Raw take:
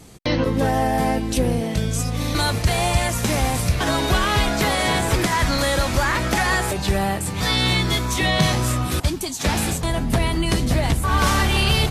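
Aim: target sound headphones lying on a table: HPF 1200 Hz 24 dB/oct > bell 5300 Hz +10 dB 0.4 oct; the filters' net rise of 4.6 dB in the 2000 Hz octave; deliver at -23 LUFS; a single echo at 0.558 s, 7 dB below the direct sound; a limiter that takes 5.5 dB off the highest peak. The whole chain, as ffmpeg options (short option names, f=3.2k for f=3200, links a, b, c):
-af "equalizer=f=2k:t=o:g=5.5,alimiter=limit=-10dB:level=0:latency=1,highpass=f=1.2k:w=0.5412,highpass=f=1.2k:w=1.3066,equalizer=f=5.3k:t=o:w=0.4:g=10,aecho=1:1:558:0.447,volume=-2dB"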